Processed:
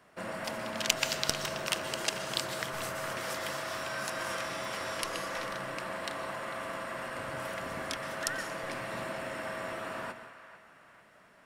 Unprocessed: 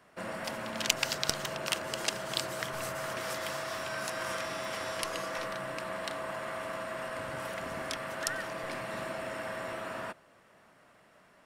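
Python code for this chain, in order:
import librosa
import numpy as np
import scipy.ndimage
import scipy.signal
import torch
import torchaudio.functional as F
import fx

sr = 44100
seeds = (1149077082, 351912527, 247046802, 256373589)

y = fx.echo_banded(x, sr, ms=447, feedback_pct=49, hz=1700.0, wet_db=-12.5)
y = fx.rev_plate(y, sr, seeds[0], rt60_s=0.82, hf_ratio=0.9, predelay_ms=110, drr_db=11.0)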